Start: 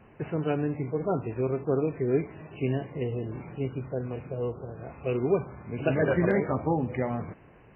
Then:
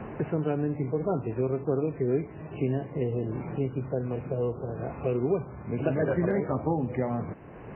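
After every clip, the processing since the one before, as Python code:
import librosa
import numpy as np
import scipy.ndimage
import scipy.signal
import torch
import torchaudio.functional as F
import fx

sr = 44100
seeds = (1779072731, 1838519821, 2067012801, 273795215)

y = fx.high_shelf(x, sr, hz=2300.0, db=-11.5)
y = fx.band_squash(y, sr, depth_pct=70)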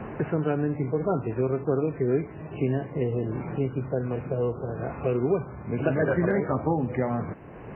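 y = fx.dynamic_eq(x, sr, hz=1500.0, q=1.7, threshold_db=-50.0, ratio=4.0, max_db=5)
y = y * librosa.db_to_amplitude(2.0)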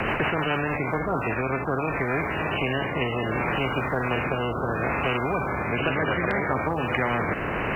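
y = fx.rider(x, sr, range_db=4, speed_s=2.0)
y = fx.rotary_switch(y, sr, hz=6.7, then_hz=0.65, switch_at_s=0.54)
y = fx.spectral_comp(y, sr, ratio=4.0)
y = y * librosa.db_to_amplitude(3.0)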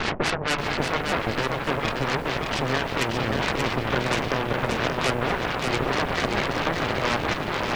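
y = fx.filter_lfo_lowpass(x, sr, shape='sine', hz=4.4, low_hz=290.0, high_hz=3600.0, q=1.0)
y = fx.cheby_harmonics(y, sr, harmonics=(7, 8), levels_db=(-15, -13), full_scale_db=-11.5)
y = fx.echo_crushed(y, sr, ms=581, feedback_pct=35, bits=8, wet_db=-4)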